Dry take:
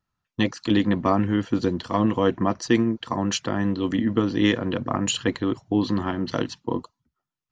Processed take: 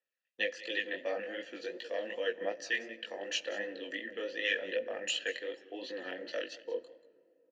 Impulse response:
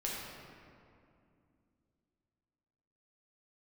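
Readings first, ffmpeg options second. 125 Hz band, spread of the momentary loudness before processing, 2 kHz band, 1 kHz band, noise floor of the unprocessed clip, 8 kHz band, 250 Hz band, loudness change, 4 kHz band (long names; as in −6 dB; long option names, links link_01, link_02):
below −40 dB, 7 LU, −2.5 dB, −20.0 dB, below −85 dBFS, −12.0 dB, −26.5 dB, −12.5 dB, −7.0 dB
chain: -filter_complex "[0:a]highpass=350,acrossover=split=660[link_01][link_02];[link_01]alimiter=level_in=1dB:limit=-24dB:level=0:latency=1,volume=-1dB[link_03];[link_03][link_02]amix=inputs=2:normalize=0,asplit=3[link_04][link_05][link_06];[link_04]bandpass=frequency=530:width_type=q:width=8,volume=0dB[link_07];[link_05]bandpass=frequency=1840:width_type=q:width=8,volume=-6dB[link_08];[link_06]bandpass=frequency=2480:width_type=q:width=8,volume=-9dB[link_09];[link_07][link_08][link_09]amix=inputs=3:normalize=0,aecho=1:1:185:0.133,crystalizer=i=4.5:c=0,aphaser=in_gain=1:out_gain=1:delay=4.1:decay=0.28:speed=0.41:type=triangular,asplit=2[link_10][link_11];[1:a]atrim=start_sample=2205,lowshelf=frequency=210:gain=10.5[link_12];[link_11][link_12]afir=irnorm=-1:irlink=0,volume=-21dB[link_13];[link_10][link_13]amix=inputs=2:normalize=0,flanger=delay=17:depth=5.4:speed=2.7,volume=3.5dB"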